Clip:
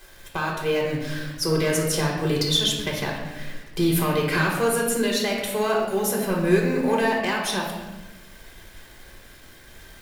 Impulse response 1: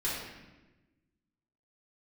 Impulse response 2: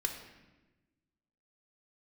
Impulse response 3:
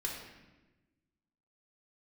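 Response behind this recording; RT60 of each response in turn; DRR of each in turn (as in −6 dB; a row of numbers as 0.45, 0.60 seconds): 3; 1.1, 1.1, 1.1 seconds; −8.0, 3.5, −1.5 decibels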